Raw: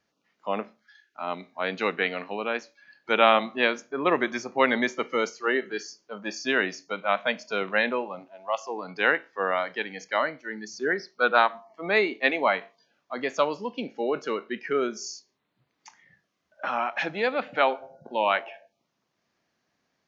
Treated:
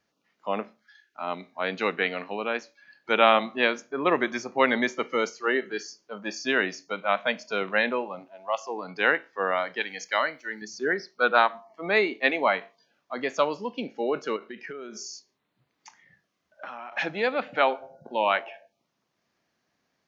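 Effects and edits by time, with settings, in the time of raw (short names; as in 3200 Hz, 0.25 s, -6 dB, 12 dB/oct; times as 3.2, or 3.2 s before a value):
9.8–10.62 tilt +2.5 dB/oct
14.36–16.92 compressor 12:1, threshold -34 dBFS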